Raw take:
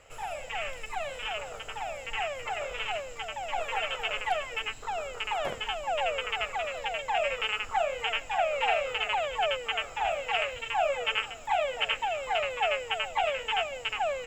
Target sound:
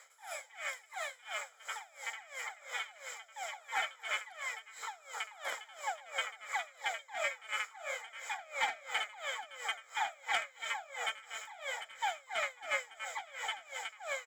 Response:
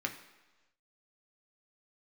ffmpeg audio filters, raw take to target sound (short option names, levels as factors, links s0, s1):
-filter_complex "[0:a]highpass=1100,highshelf=f=5800:g=6.5,asoftclip=type=tanh:threshold=0.106,asuperstop=centerf=2700:order=4:qfactor=3.6,asplit=2[s0][s1];[s1]adelay=262.4,volume=0.251,highshelf=f=4000:g=-5.9[s2];[s0][s2]amix=inputs=2:normalize=0,asplit=2[s3][s4];[1:a]atrim=start_sample=2205[s5];[s4][s5]afir=irnorm=-1:irlink=0,volume=0.447[s6];[s3][s6]amix=inputs=2:normalize=0,aeval=exprs='val(0)*pow(10,-23*(0.5-0.5*cos(2*PI*2.9*n/s))/20)':c=same"